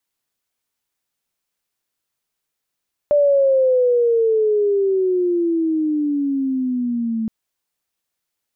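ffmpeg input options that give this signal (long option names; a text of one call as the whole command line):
ffmpeg -f lavfi -i "aevalsrc='pow(10,(-11-8*t/4.17)/20)*sin(2*PI*590*4.17/log(220/590)*(exp(log(220/590)*t/4.17)-1))':duration=4.17:sample_rate=44100" out.wav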